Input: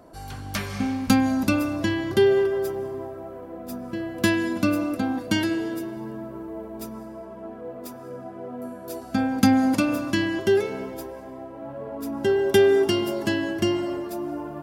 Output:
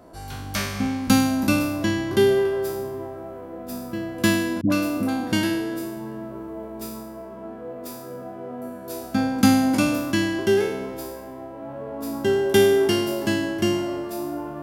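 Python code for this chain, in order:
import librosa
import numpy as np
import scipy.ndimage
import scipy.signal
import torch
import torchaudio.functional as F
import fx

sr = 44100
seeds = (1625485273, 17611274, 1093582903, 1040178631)

y = fx.spec_trails(x, sr, decay_s=0.83)
y = fx.dispersion(y, sr, late='highs', ms=93.0, hz=480.0, at=(4.61, 5.33))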